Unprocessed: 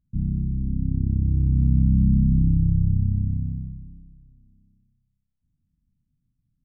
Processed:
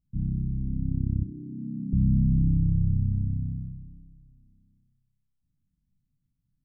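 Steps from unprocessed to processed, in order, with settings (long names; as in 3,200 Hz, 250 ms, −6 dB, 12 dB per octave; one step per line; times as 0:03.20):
0:01.24–0:01.93: high-pass filter 220 Hz 24 dB per octave
convolution reverb RT60 0.30 s, pre-delay 7 ms, DRR 12.5 dB
level −4.5 dB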